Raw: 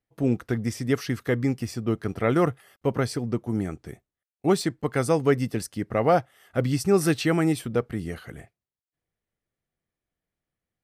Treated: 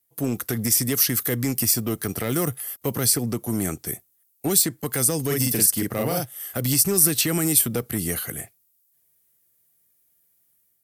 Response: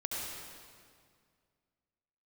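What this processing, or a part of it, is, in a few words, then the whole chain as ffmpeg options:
FM broadcast chain: -filter_complex "[0:a]asettb=1/sr,asplit=3[s0][s1][s2];[s0]atrim=end=5.264[s3];[s1]atrim=start=5.26:end=6.6,asetpts=PTS-STARTPTS,afade=t=in:d=0.004:c=qsin,afade=t=out:st=1.336:d=0.004:c=qsin,asplit=2[s4][s5];[s5]adelay=41,volume=0.794[s6];[s4][s6]amix=inputs=2:normalize=0,atrim=end_sample=59094[s7];[s2]atrim=start=6.596[s8];[s3][s7]acrossfade=d=0.004:c1=hsin:c2=qsin[s9];[s9][s8]acrossfade=d=0.004:c1=qsin:c2=hsin,highpass=78,dynaudnorm=f=120:g=5:m=1.88,acrossover=split=350|2900[s10][s11][s12];[s10]acompressor=threshold=0.112:ratio=4[s13];[s11]acompressor=threshold=0.0562:ratio=4[s14];[s12]acompressor=threshold=0.0224:ratio=4[s15];[s13][s14][s15]amix=inputs=3:normalize=0,aemphasis=mode=production:type=50fm,alimiter=limit=0.188:level=0:latency=1:release=74,asoftclip=type=hard:threshold=0.141,lowpass=f=15000:w=0.5412,lowpass=f=15000:w=1.3066,aemphasis=mode=production:type=50fm"

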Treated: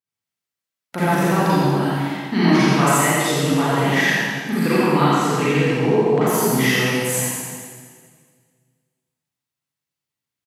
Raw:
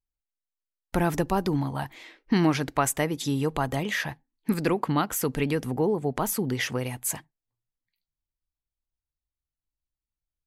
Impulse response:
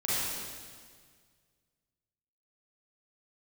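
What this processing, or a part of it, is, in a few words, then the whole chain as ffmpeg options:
PA in a hall: -filter_complex "[0:a]asettb=1/sr,asplit=3[s0][s1][s2];[s0]atrim=end=5.054[s3];[s1]atrim=start=5.05:end=6.27,asetpts=PTS-STARTPTS,afade=t=in:d=0.004:c=qsin,afade=t=out:st=1.216:d=0.004:c=qsin,lowpass=5300[s4];[s2]atrim=start=6.266[s5];[s3][s4]acrossfade=d=0.004:c1=hsin:c2=qsin[s6];[s6][s5]acrossfade=d=0.004:c1=qsin:c2=hsin,highpass=f=120:w=0.5412,highpass=f=120:w=1.3066,equalizer=f=2400:t=o:w=2.6:g=4,aecho=1:1:85:0.562[s7];[1:a]atrim=start_sample=2205[s8];[s7][s8]afir=irnorm=-1:irlink=0,volume=0.75"

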